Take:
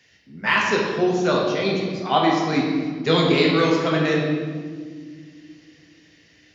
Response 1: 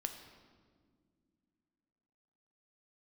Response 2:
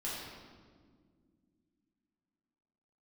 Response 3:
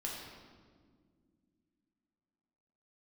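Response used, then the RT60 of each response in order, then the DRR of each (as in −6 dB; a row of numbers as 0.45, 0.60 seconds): 3; non-exponential decay, non-exponential decay, non-exponential decay; 5.5, −8.0, −3.5 decibels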